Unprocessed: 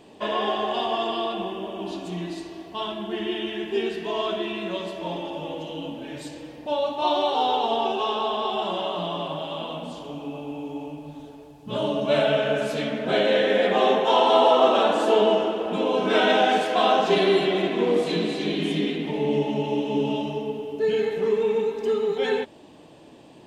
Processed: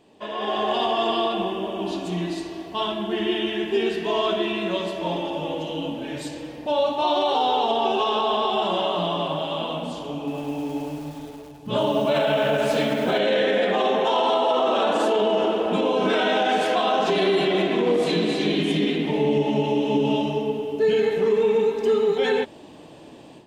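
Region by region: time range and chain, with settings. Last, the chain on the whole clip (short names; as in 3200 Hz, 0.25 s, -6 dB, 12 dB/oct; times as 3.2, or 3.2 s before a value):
10.17–13.19 dynamic EQ 900 Hz, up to +4 dB, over -36 dBFS + lo-fi delay 0.104 s, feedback 80%, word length 7-bit, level -12.5 dB
whole clip: limiter -17 dBFS; AGC gain up to 11.5 dB; gain -7 dB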